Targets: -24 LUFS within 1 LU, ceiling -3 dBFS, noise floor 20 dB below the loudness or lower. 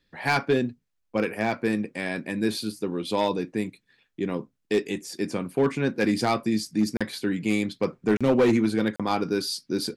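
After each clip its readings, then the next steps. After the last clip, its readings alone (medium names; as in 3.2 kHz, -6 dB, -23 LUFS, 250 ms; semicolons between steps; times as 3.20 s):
clipped samples 0.6%; clipping level -14.5 dBFS; dropouts 3; longest dropout 36 ms; loudness -26.5 LUFS; peak level -14.5 dBFS; loudness target -24.0 LUFS
-> clip repair -14.5 dBFS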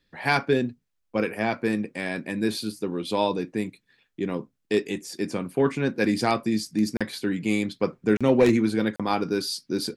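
clipped samples 0.0%; dropouts 3; longest dropout 36 ms
-> interpolate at 6.97/8.17/8.96 s, 36 ms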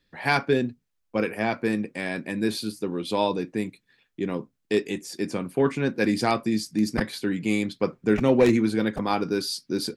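dropouts 0; loudness -26.0 LUFS; peak level -6.5 dBFS; loudness target -24.0 LUFS
-> trim +2 dB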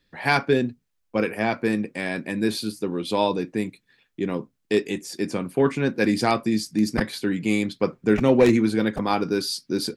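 loudness -24.0 LUFS; peak level -4.5 dBFS; noise floor -73 dBFS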